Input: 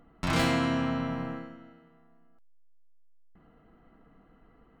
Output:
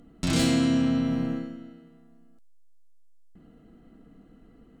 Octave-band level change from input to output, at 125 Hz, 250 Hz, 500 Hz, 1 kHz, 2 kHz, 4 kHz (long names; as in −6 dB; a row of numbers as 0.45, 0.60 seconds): +3.5, +6.5, +0.5, −6.0, −3.0, +3.5 decibels